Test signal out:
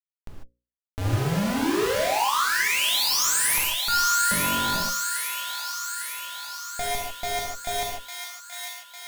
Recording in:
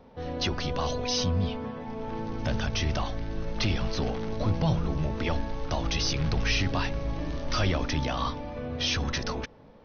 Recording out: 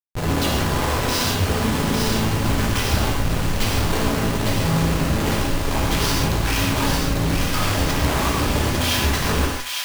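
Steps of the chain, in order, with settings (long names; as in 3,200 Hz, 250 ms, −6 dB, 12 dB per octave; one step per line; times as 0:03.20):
in parallel at +2 dB: downward compressor 6 to 1, threshold −38 dBFS
on the sum: steady tone 1,000 Hz −35 dBFS
comparator with hysteresis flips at −30 dBFS
mains-hum notches 60/120/180/240/300/360/420/480/540 Hz
delay with a high-pass on its return 852 ms, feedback 62%, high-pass 1,600 Hz, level −4 dB
reverb whose tail is shaped and stops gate 170 ms flat, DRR −2.5 dB
level +2 dB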